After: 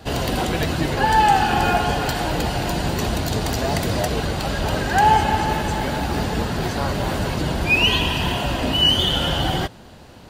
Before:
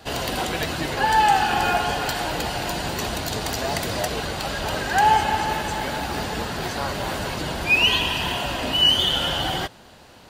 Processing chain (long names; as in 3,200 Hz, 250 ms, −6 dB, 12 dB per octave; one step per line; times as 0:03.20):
low-shelf EQ 420 Hz +9 dB